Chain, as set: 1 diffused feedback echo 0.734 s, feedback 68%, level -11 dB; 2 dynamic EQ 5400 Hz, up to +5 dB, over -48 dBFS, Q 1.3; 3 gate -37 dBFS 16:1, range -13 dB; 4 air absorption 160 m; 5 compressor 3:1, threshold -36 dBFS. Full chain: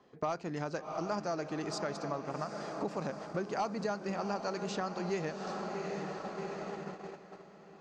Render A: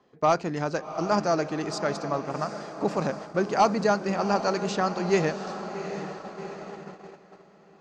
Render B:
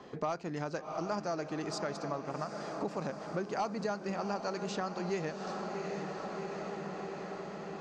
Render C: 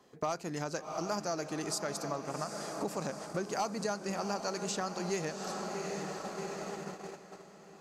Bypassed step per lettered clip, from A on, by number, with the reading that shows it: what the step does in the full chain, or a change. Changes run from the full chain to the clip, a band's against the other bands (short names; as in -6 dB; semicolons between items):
5, mean gain reduction 6.5 dB; 3, momentary loudness spread change -2 LU; 4, 8 kHz band +10.5 dB